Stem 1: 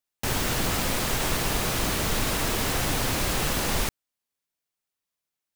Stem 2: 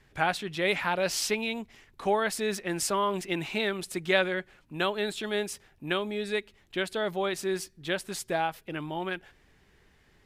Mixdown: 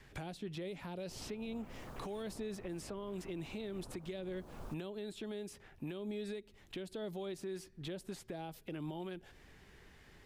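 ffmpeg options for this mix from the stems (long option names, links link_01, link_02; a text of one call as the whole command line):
ffmpeg -i stem1.wav -i stem2.wav -filter_complex "[0:a]afwtdn=0.0355,adelay=850,volume=-19dB[link_01];[1:a]acrossover=split=450|3000[link_02][link_03][link_04];[link_03]acompressor=threshold=-40dB:ratio=6[link_05];[link_02][link_05][link_04]amix=inputs=3:normalize=0,volume=2.5dB[link_06];[link_01][link_06]amix=inputs=2:normalize=0,acrossover=split=950|3100[link_07][link_08][link_09];[link_07]acompressor=threshold=-32dB:ratio=4[link_10];[link_08]acompressor=threshold=-53dB:ratio=4[link_11];[link_09]acompressor=threshold=-52dB:ratio=4[link_12];[link_10][link_11][link_12]amix=inputs=3:normalize=0,alimiter=level_in=10dB:limit=-24dB:level=0:latency=1:release=307,volume=-10dB" out.wav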